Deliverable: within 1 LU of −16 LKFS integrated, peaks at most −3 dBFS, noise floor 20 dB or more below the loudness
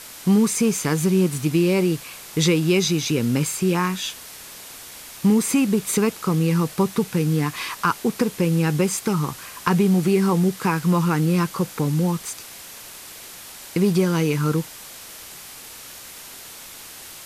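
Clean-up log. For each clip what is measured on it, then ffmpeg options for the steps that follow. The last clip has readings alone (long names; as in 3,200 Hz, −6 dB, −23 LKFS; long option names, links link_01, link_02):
background noise floor −40 dBFS; target noise floor −41 dBFS; integrated loudness −21.0 LKFS; sample peak −5.0 dBFS; target loudness −16.0 LKFS
→ -af "afftdn=noise_reduction=6:noise_floor=-40"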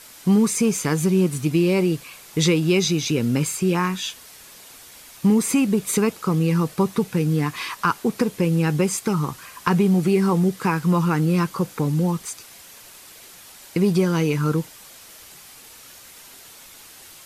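background noise floor −45 dBFS; integrated loudness −21.5 LKFS; sample peak −5.0 dBFS; target loudness −16.0 LKFS
→ -af "volume=5.5dB,alimiter=limit=-3dB:level=0:latency=1"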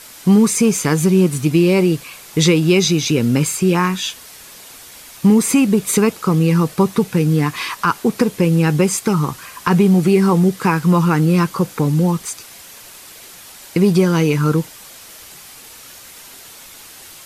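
integrated loudness −16.0 LKFS; sample peak −3.0 dBFS; background noise floor −40 dBFS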